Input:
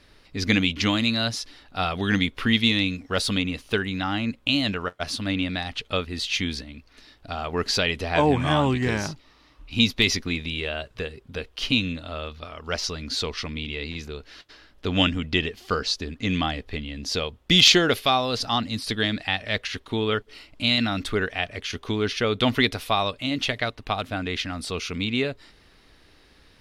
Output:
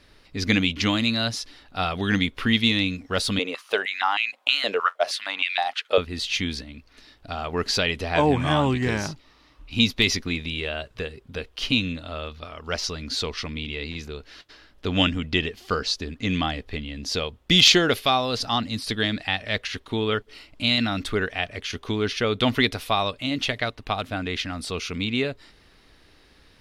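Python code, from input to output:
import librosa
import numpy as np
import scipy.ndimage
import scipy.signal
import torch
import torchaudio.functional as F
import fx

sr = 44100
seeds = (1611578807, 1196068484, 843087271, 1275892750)

y = fx.filter_held_highpass(x, sr, hz=6.4, low_hz=470.0, high_hz=2400.0, at=(3.39, 5.98))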